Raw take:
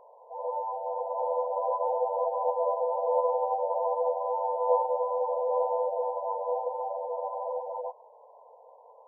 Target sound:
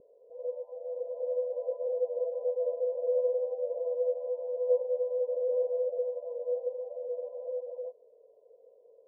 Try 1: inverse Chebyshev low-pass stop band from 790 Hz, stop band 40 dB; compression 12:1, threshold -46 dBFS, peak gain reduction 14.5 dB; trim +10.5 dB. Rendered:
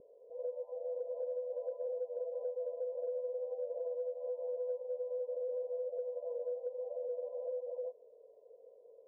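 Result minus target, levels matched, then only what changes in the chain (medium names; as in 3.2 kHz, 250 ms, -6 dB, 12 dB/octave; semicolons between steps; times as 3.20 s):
compression: peak gain reduction +14.5 dB
remove: compression 12:1, threshold -46 dBFS, peak gain reduction 14.5 dB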